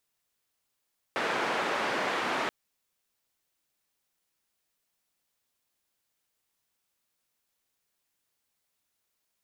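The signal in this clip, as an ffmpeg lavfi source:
ffmpeg -f lavfi -i "anoisesrc=color=white:duration=1.33:sample_rate=44100:seed=1,highpass=frequency=280,lowpass=frequency=1600,volume=-13.4dB" out.wav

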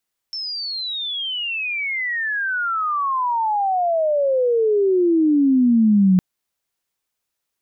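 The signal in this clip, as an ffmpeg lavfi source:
ffmpeg -f lavfi -i "aevalsrc='pow(10,(-25+14.5*t/5.86)/20)*sin(2*PI*5400*5.86/log(180/5400)*(exp(log(180/5400)*t/5.86)-1))':duration=5.86:sample_rate=44100" out.wav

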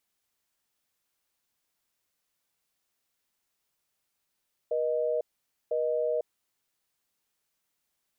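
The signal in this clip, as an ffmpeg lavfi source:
ffmpeg -f lavfi -i "aevalsrc='0.0398*(sin(2*PI*480*t)+sin(2*PI*620*t))*clip(min(mod(t,1),0.5-mod(t,1))/0.005,0,1)':duration=1.85:sample_rate=44100" out.wav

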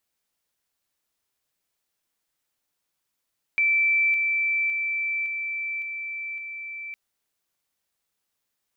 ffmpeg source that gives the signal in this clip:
ffmpeg -f lavfi -i "aevalsrc='pow(10,(-18-3*floor(t/0.56))/20)*sin(2*PI*2330*t)':duration=3.36:sample_rate=44100" out.wav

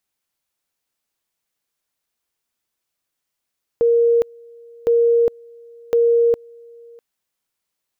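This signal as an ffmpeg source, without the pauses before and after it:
ffmpeg -f lavfi -i "aevalsrc='pow(10,(-11.5-28*gte(mod(t,1.06),0.41))/20)*sin(2*PI*468*t)':duration=3.18:sample_rate=44100" out.wav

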